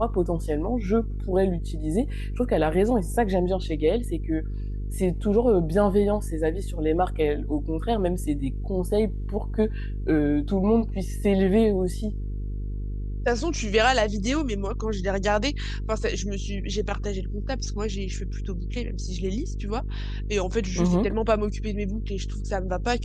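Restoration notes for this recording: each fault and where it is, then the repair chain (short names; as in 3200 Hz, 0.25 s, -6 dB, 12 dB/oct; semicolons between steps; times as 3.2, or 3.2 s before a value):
buzz 50 Hz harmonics 9 -30 dBFS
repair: de-hum 50 Hz, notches 9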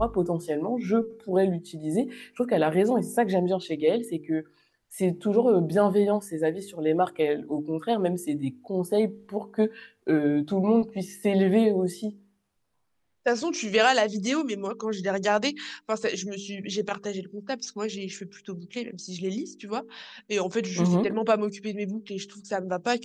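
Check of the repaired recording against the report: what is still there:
none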